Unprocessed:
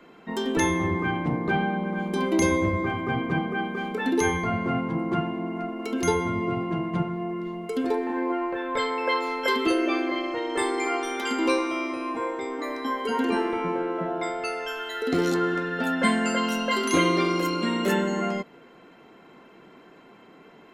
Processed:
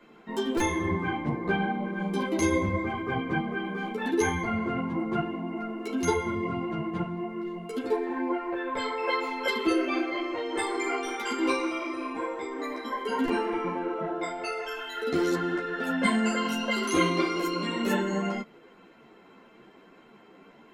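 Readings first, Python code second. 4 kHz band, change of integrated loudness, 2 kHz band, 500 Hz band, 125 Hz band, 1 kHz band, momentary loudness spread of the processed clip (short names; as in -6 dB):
-3.0 dB, -3.0 dB, -3.0 dB, -3.0 dB, -4.0 dB, -3.5 dB, 8 LU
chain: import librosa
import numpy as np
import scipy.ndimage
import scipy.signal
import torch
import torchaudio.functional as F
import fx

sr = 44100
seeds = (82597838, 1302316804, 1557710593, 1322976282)

y = fx.buffer_glitch(x, sr, at_s=(0.57, 13.25), block=128, repeats=10)
y = fx.ensemble(y, sr)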